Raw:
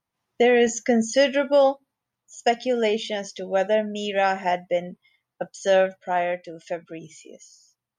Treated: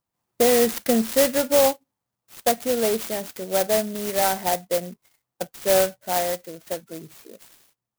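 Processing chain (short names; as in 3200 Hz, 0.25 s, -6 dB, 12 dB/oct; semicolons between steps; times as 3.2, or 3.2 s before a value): clock jitter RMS 0.11 ms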